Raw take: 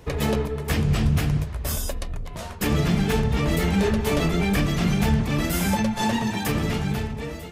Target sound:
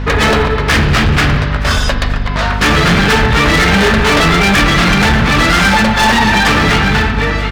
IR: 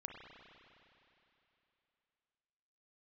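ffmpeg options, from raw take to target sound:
-filter_complex "[0:a]lowpass=frequency=4400:width_type=q:width=1.7,equalizer=frequency=1500:width_type=o:width=1.5:gain=13.5,bandreject=frequency=50:width_type=h:width=6,bandreject=frequency=100:width_type=h:width=6,bandreject=frequency=150:width_type=h:width=6,aeval=exprs='val(0)+0.0316*(sin(2*PI*50*n/s)+sin(2*PI*2*50*n/s)/2+sin(2*PI*3*50*n/s)/3+sin(2*PI*4*50*n/s)/4+sin(2*PI*5*50*n/s)/5)':channel_layout=same,volume=20.5dB,asoftclip=hard,volume=-20.5dB,aecho=1:1:920|1840|2760:0.0891|0.0383|0.0165,asplit=2[link_01][link_02];[1:a]atrim=start_sample=2205,asetrate=57330,aresample=44100[link_03];[link_02][link_03]afir=irnorm=-1:irlink=0,volume=2.5dB[link_04];[link_01][link_04]amix=inputs=2:normalize=0,volume=9dB"

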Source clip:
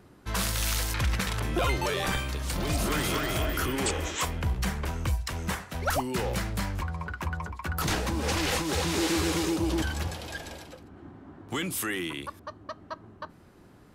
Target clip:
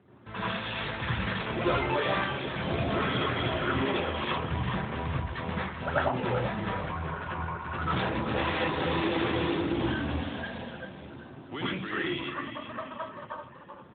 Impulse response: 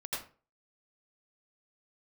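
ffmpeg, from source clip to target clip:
-filter_complex "[0:a]asplit=6[link_01][link_02][link_03][link_04][link_05][link_06];[link_02]adelay=386,afreqshift=-46,volume=-8dB[link_07];[link_03]adelay=772,afreqshift=-92,volume=-14.6dB[link_08];[link_04]adelay=1158,afreqshift=-138,volume=-21.1dB[link_09];[link_05]adelay=1544,afreqshift=-184,volume=-27.7dB[link_10];[link_06]adelay=1930,afreqshift=-230,volume=-34.2dB[link_11];[link_01][link_07][link_08][link_09][link_10][link_11]amix=inputs=6:normalize=0[link_12];[1:a]atrim=start_sample=2205[link_13];[link_12][link_13]afir=irnorm=-1:irlink=0" -ar 8000 -c:a libopencore_amrnb -b:a 12200

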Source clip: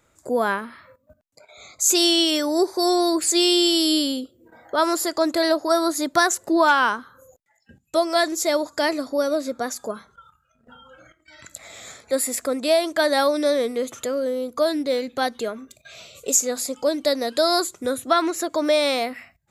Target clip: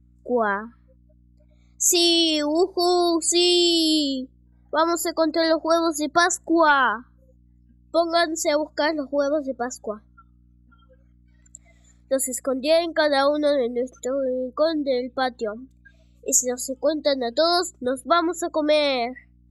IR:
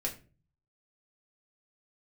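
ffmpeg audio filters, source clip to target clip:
-af "aeval=exprs='0.562*(cos(1*acos(clip(val(0)/0.562,-1,1)))-cos(1*PI/2))+0.00501*(cos(4*acos(clip(val(0)/0.562,-1,1)))-cos(4*PI/2))':channel_layout=same,afftdn=noise_reduction=27:noise_floor=-30,aeval=exprs='val(0)+0.002*(sin(2*PI*60*n/s)+sin(2*PI*2*60*n/s)/2+sin(2*PI*3*60*n/s)/3+sin(2*PI*4*60*n/s)/4+sin(2*PI*5*60*n/s)/5)':channel_layout=same"

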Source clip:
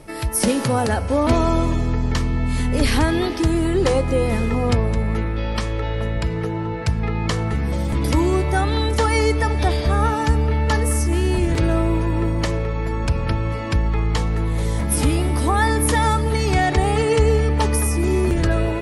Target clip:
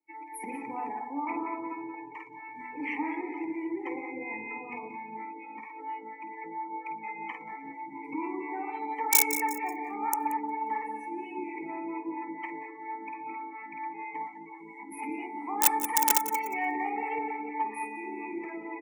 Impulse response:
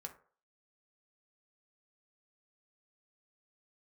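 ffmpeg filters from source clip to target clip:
-filter_complex "[0:a]asplit=3[link_01][link_02][link_03];[link_01]bandpass=frequency=300:width_type=q:width=8,volume=0dB[link_04];[link_02]bandpass=frequency=870:width_type=q:width=8,volume=-6dB[link_05];[link_03]bandpass=frequency=2240:width_type=q:width=8,volume=-9dB[link_06];[link_04][link_05][link_06]amix=inputs=3:normalize=0,equalizer=frequency=1800:width=2.9:gain=13.5,asplit=2[link_07][link_08];[link_08]aecho=0:1:50|115|199.5|309.4|452.2:0.631|0.398|0.251|0.158|0.1[link_09];[link_07][link_09]amix=inputs=2:normalize=0,acrossover=split=570[link_10][link_11];[link_10]aeval=exprs='val(0)*(1-0.5/2+0.5/2*cos(2*PI*4.3*n/s))':channel_layout=same[link_12];[link_11]aeval=exprs='val(0)*(1-0.5/2-0.5/2*cos(2*PI*4.3*n/s))':channel_layout=same[link_13];[link_12][link_13]amix=inputs=2:normalize=0,lowshelf=frequency=390:width_type=q:width=1.5:gain=-7.5,bandreject=frequency=50:width_type=h:width=6,bandreject=frequency=100:width_type=h:width=6,bandreject=frequency=150:width_type=h:width=6,bandreject=frequency=200:width_type=h:width=6,bandreject=frequency=250:width_type=h:width=6,bandreject=frequency=300:width_type=h:width=6,aeval=exprs='(mod(10*val(0)+1,2)-1)/10':channel_layout=same,highpass=170,asplit=2[link_14][link_15];[link_15]aecho=0:1:179|358|537|716|895|1074:0.299|0.155|0.0807|0.042|0.0218|0.0114[link_16];[link_14][link_16]amix=inputs=2:normalize=0,aexciter=amount=6.9:drive=2.2:freq=5900,afftdn=noise_reduction=28:noise_floor=-40"

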